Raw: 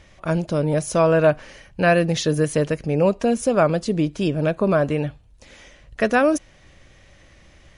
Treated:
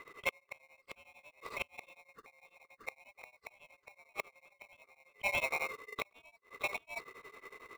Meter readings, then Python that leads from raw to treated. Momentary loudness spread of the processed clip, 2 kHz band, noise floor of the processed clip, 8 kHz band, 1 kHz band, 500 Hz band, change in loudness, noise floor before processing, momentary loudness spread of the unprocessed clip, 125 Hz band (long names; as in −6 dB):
23 LU, −11.5 dB, −75 dBFS, −20.5 dB, −19.5 dB, −28.5 dB, −19.0 dB, −52 dBFS, 7 LU, −39.0 dB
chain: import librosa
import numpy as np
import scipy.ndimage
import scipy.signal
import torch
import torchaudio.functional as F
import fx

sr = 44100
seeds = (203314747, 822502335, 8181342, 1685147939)

p1 = fx.band_swap(x, sr, width_hz=2000)
p2 = p1 + 10.0 ** (-7.5 / 20.0) * np.pad(p1, (int(620 * sr / 1000.0), 0))[:len(p1)]
p3 = fx.gate_flip(p2, sr, shuts_db=-14.0, range_db=-35)
p4 = fx.ladder_bandpass(p3, sr, hz=1200.0, resonance_pct=85)
p5 = fx.peak_eq(p4, sr, hz=1100.0, db=2.5, octaves=0.77)
p6 = fx.sample_hold(p5, sr, seeds[0], rate_hz=1600.0, jitter_pct=0)
p7 = p5 + (p6 * 10.0 ** (-3.5 / 20.0))
p8 = p7 * np.abs(np.cos(np.pi * 11.0 * np.arange(len(p7)) / sr))
y = p8 * 10.0 ** (8.5 / 20.0)